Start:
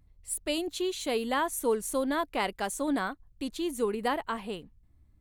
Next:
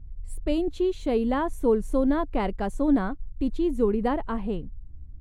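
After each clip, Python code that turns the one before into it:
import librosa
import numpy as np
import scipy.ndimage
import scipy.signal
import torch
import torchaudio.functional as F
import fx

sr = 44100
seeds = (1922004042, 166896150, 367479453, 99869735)

y = fx.tilt_eq(x, sr, slope=-4.5)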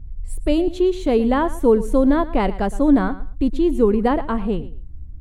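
y = fx.echo_feedback(x, sr, ms=115, feedback_pct=20, wet_db=-16.5)
y = F.gain(torch.from_numpy(y), 7.0).numpy()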